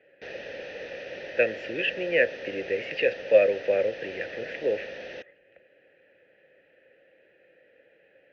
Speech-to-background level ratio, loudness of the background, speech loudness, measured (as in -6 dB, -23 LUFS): 12.0 dB, -38.5 LUFS, -26.5 LUFS